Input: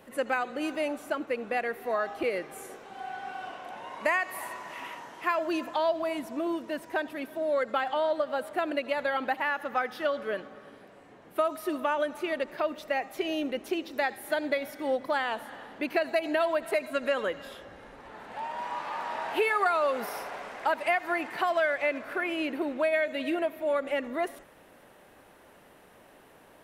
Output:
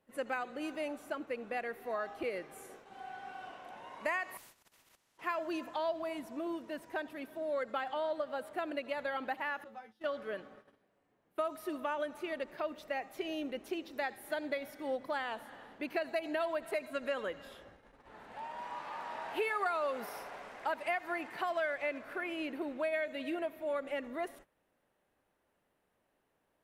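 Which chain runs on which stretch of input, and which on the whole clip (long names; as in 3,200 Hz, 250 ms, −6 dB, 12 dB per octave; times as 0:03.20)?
0:04.37–0:05.18: output level in coarse steps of 14 dB + tuned comb filter 71 Hz, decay 1.9 s, mix 50% + every bin compressed towards the loudest bin 4 to 1
0:09.64–0:10.04: low-pass filter 11,000 Hz + parametric band 1,400 Hz −8 dB 2.1 octaves + tuned comb filter 110 Hz, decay 0.17 s, mix 100%
whole clip: noise gate −47 dBFS, range −15 dB; low-shelf EQ 110 Hz +5 dB; level −8 dB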